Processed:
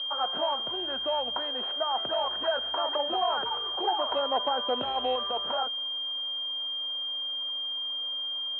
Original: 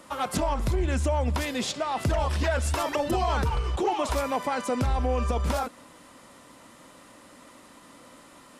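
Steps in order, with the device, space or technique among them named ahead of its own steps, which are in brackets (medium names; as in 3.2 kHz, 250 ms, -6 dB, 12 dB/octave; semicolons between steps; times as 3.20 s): low-pass 6 kHz 12 dB/octave; 4.11–5.16 s: tilt shelf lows +6 dB, about 1.1 kHz; toy sound module (decimation joined by straight lines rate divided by 4×; class-D stage that switches slowly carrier 3.2 kHz; cabinet simulation 610–3900 Hz, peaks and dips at 700 Hz +3 dB, 1.5 kHz +4 dB, 2.2 kHz -9 dB, 3.2 kHz +4 dB)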